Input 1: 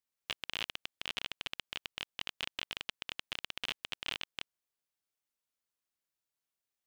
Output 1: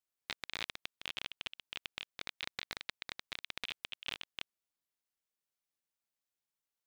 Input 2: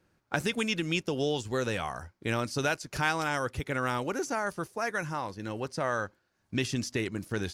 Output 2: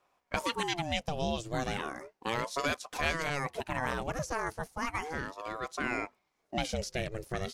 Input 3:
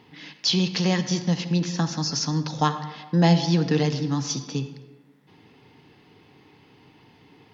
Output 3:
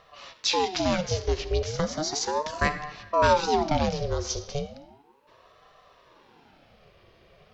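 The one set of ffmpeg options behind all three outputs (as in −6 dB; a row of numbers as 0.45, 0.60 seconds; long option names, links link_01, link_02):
-af "aeval=exprs='val(0)*sin(2*PI*560*n/s+560*0.6/0.35*sin(2*PI*0.35*n/s))':channel_layout=same"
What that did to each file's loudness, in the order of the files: −3.0, −3.0, −3.0 LU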